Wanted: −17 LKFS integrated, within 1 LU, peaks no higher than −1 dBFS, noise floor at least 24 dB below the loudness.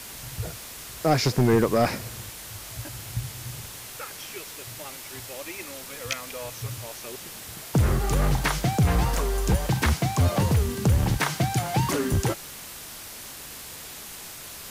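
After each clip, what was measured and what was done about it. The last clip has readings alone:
share of clipped samples 0.3%; peaks flattened at −14.0 dBFS; background noise floor −41 dBFS; target noise floor −51 dBFS; integrated loudness −26.5 LKFS; sample peak −14.0 dBFS; target loudness −17.0 LKFS
→ clipped peaks rebuilt −14 dBFS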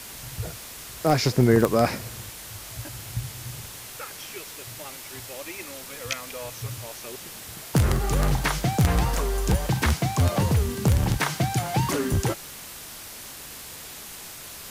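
share of clipped samples 0.0%; background noise floor −41 dBFS; target noise floor −50 dBFS
→ broadband denoise 9 dB, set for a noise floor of −41 dBFS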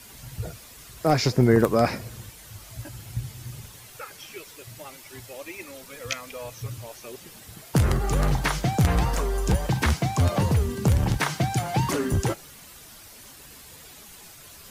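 background noise floor −47 dBFS; target noise floor −49 dBFS
→ broadband denoise 6 dB, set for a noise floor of −47 dBFS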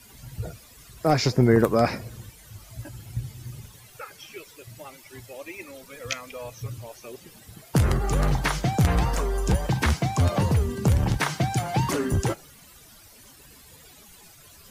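background noise floor −51 dBFS; integrated loudness −24.5 LKFS; sample peak −5.5 dBFS; target loudness −17.0 LKFS
→ level +7.5 dB
brickwall limiter −1 dBFS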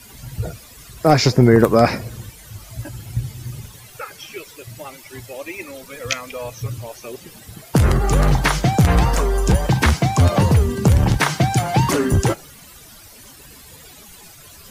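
integrated loudness −17.5 LKFS; sample peak −1.0 dBFS; background noise floor −43 dBFS

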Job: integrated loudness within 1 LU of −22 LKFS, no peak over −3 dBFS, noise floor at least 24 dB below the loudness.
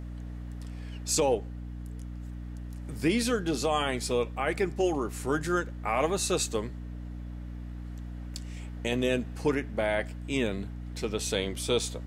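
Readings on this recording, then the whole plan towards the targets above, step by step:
mains hum 60 Hz; hum harmonics up to 300 Hz; level of the hum −36 dBFS; integrated loudness −30.0 LKFS; sample peak −14.0 dBFS; target loudness −22.0 LKFS
→ mains-hum notches 60/120/180/240/300 Hz
level +8 dB

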